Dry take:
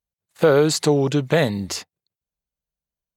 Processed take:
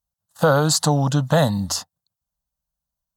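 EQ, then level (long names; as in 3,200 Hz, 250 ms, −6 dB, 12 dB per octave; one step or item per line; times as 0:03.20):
phaser with its sweep stopped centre 940 Hz, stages 4
+6.0 dB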